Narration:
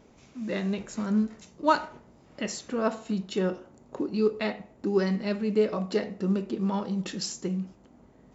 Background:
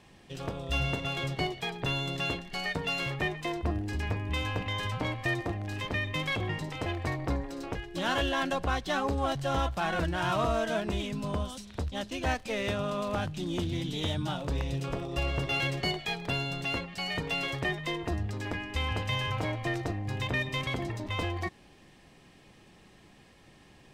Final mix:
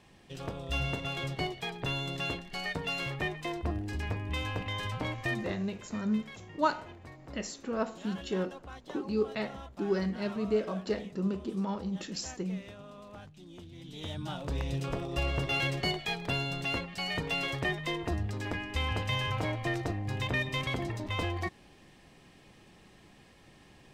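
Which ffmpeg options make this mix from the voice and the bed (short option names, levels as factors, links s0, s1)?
-filter_complex "[0:a]adelay=4950,volume=0.562[s0];[1:a]volume=5.01,afade=t=out:st=5.3:d=0.4:silence=0.188365,afade=t=in:st=13.75:d=1.02:silence=0.149624[s1];[s0][s1]amix=inputs=2:normalize=0"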